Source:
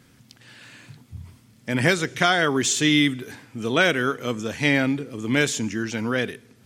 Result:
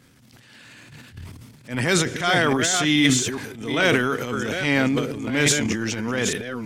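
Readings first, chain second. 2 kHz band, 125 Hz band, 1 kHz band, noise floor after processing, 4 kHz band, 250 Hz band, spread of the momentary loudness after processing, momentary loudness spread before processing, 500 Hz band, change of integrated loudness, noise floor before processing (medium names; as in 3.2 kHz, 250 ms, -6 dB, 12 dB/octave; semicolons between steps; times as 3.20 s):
+0.5 dB, +1.5 dB, +0.5 dB, -52 dBFS, +1.5 dB, +1.0 dB, 8 LU, 10 LU, +1.0 dB, +1.0 dB, -55 dBFS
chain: chunks repeated in reverse 422 ms, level -7 dB; transient shaper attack -11 dB, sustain +10 dB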